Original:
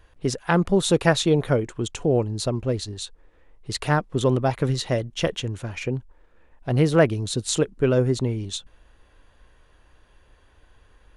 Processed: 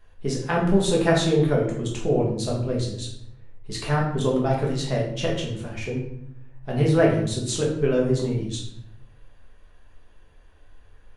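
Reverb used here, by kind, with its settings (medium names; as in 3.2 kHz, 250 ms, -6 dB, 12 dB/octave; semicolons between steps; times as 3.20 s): simulated room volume 160 m³, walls mixed, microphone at 1.4 m; trim -6.5 dB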